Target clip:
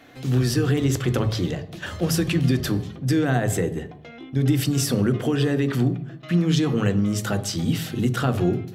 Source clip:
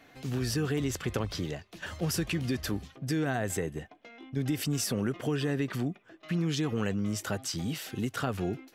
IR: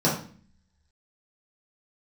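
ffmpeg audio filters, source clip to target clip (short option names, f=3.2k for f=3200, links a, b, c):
-filter_complex "[0:a]asplit=2[a][b];[1:a]atrim=start_sample=2205,asetrate=32634,aresample=44100[c];[b][c]afir=irnorm=-1:irlink=0,volume=-23.5dB[d];[a][d]amix=inputs=2:normalize=0,volume=5.5dB"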